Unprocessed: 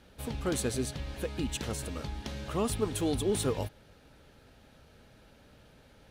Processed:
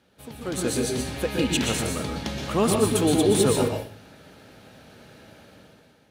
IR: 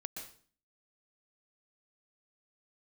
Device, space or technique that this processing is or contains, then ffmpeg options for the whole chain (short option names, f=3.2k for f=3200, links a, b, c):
far laptop microphone: -filter_complex "[0:a]asettb=1/sr,asplit=3[a][b][c];[a]atrim=end=1.264[d];[b]atrim=start=1.26:end=1.77,asetpts=PTS-STARTPTS,afade=t=in:d=0.004:c=qsin,afade=t=out:st=0.506:d=0.004:c=qsin,equalizer=f=2.4k:w=0.99:g=4.5[e];[c]atrim=start=1.766[f];[d][e]acrossfade=d=0.004:c1=hsin:c2=qsin[g];[g][f]acrossfade=d=0.004:c1=qsin:c2=hsin[h];[1:a]atrim=start_sample=2205[i];[h][i]afir=irnorm=-1:irlink=0,highpass=110,dynaudnorm=f=200:g=7:m=12.5dB"